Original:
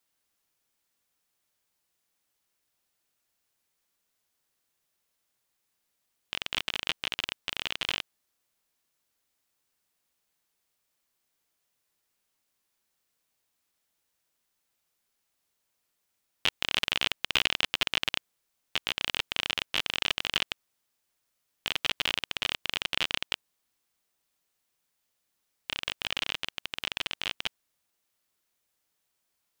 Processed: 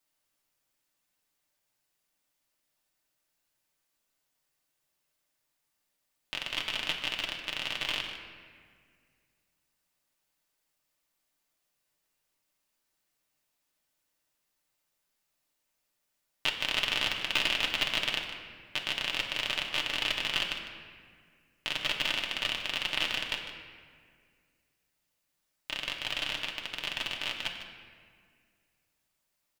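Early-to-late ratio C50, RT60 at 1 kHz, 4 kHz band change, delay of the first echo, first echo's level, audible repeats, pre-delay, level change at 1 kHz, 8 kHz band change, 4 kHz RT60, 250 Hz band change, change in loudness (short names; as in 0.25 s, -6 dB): 5.0 dB, 1.8 s, -1.0 dB, 0.152 s, -11.5 dB, 1, 3 ms, -0.5 dB, -1.5 dB, 1.2 s, 0.0 dB, -0.5 dB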